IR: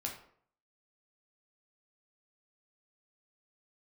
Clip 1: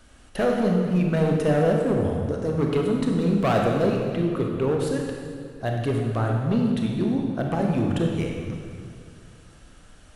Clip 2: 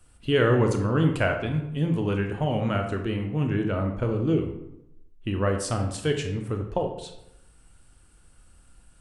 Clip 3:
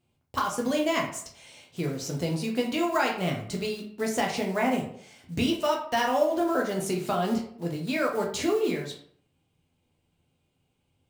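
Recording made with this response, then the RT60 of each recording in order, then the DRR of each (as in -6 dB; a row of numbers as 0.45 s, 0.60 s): 3; 2.2 s, 0.85 s, 0.60 s; 0.5 dB, 3.5 dB, -0.5 dB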